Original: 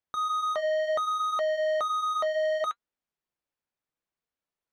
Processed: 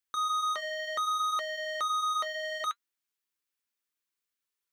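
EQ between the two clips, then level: tilt EQ +2 dB/octave; peaking EQ 130 Hz -9.5 dB 0.87 oct; peaking EQ 680 Hz -12 dB 0.76 oct; 0.0 dB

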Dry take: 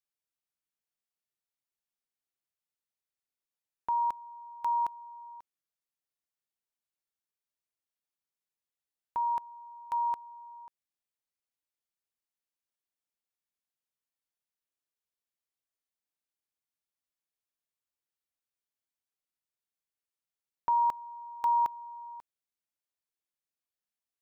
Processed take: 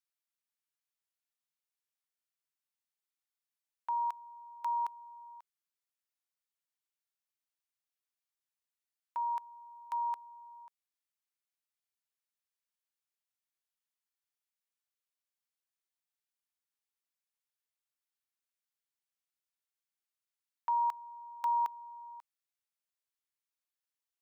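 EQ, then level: high-pass 910 Hz 12 dB/octave; -1.5 dB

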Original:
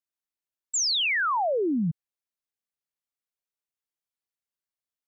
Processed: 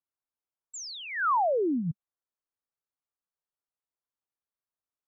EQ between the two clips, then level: peaking EQ 200 Hz -7 dB 0.27 oct; resonant high shelf 1.8 kHz -12 dB, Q 1.5; -1.5 dB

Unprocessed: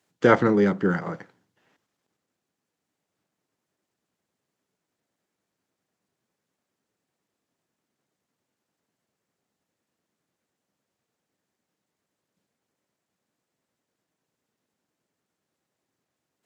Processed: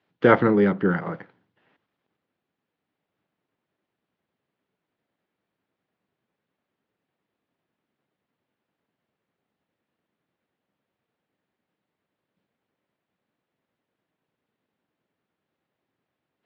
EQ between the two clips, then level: low-pass 3.6 kHz 24 dB/octave; +1.0 dB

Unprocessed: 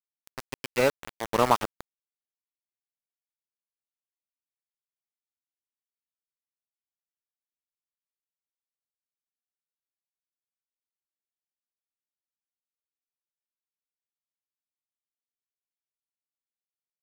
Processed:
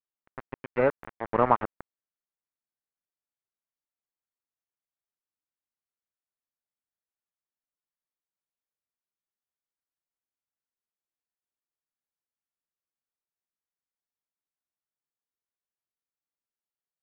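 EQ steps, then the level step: low-pass 1.9 kHz 24 dB/octave; 0.0 dB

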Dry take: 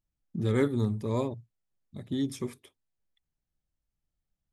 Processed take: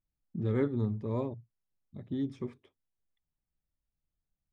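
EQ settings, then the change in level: tape spacing loss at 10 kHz 29 dB; -2.5 dB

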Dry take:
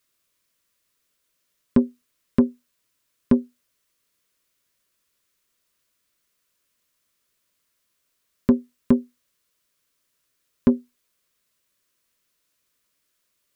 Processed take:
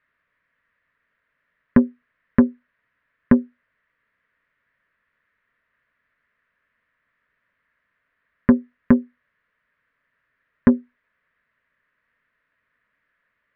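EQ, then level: resonant low-pass 1.8 kHz, resonance Q 4.6; distance through air 170 m; peaking EQ 350 Hz -12.5 dB 0.21 oct; +4.0 dB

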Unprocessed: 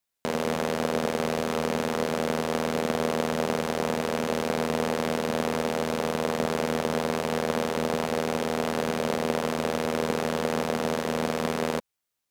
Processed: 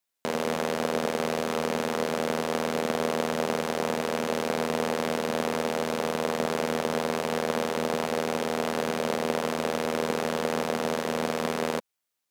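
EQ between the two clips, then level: bass shelf 110 Hz -11 dB; 0.0 dB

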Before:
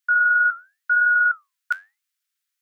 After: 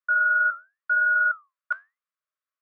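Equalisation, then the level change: two resonant band-passes 820 Hz, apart 0.85 oct; +7.5 dB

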